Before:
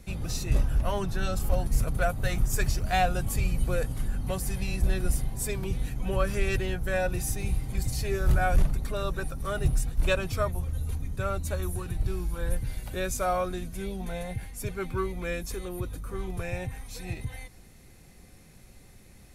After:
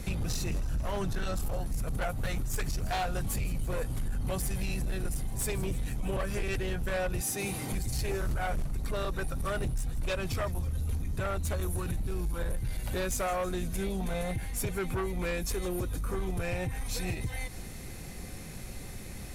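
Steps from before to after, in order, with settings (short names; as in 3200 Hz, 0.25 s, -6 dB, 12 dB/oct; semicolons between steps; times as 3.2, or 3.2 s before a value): 7.21–7.72 HPF 240 Hz 12 dB/oct; compressor 3:1, threshold -40 dBFS, peak gain reduction 17 dB; sine folder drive 7 dB, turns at -26.5 dBFS; thin delay 0.162 s, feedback 75%, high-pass 5100 Hz, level -15 dB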